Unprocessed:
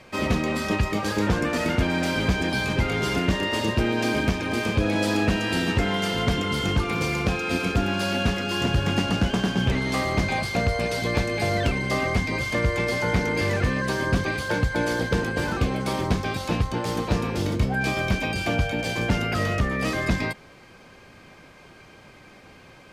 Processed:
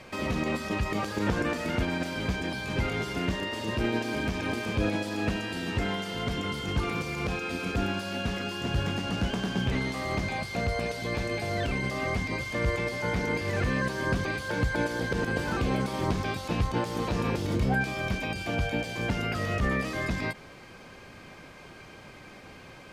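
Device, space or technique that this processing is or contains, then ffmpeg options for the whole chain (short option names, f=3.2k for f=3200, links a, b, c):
de-esser from a sidechain: -filter_complex "[0:a]asplit=2[a][b];[b]highpass=4.9k,apad=whole_len=1011122[c];[a][c]sidechaincompress=threshold=-44dB:ratio=8:attack=1.1:release=68,volume=1dB"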